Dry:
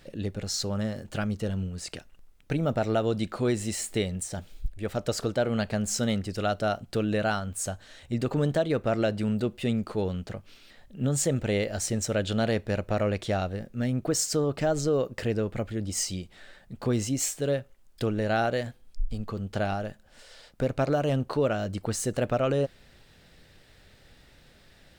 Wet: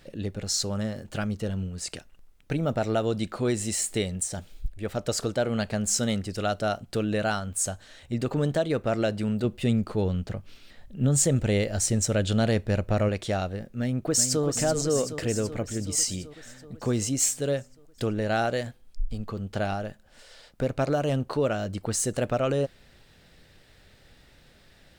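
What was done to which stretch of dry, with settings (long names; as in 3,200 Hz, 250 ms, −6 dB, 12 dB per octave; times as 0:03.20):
0:09.44–0:13.09: low-shelf EQ 180 Hz +7.5 dB
0:13.79–0:14.43: delay throw 380 ms, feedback 70%, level −7.5 dB
whole clip: dynamic equaliser 8,200 Hz, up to +6 dB, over −48 dBFS, Q 0.81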